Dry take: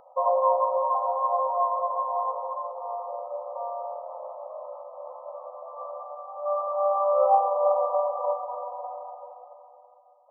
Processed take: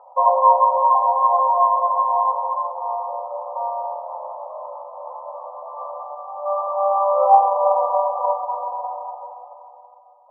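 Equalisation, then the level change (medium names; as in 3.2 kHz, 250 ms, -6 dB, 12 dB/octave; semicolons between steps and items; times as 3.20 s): high-pass 440 Hz 24 dB/octave; resonant low-pass 960 Hz, resonance Q 4.2; 0.0 dB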